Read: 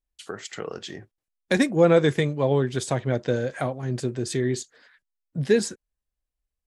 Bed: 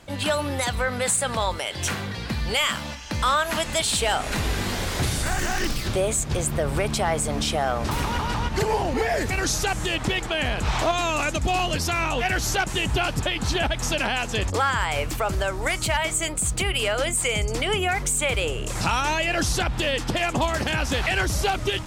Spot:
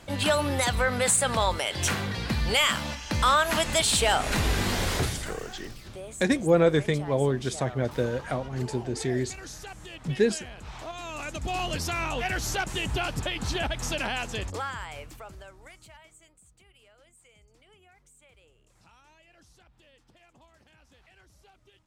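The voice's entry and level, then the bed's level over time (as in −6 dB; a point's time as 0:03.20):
4.70 s, −3.0 dB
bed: 0:04.94 0 dB
0:05.44 −17.5 dB
0:10.79 −17.5 dB
0:11.67 −5.5 dB
0:14.22 −5.5 dB
0:16.50 −35.5 dB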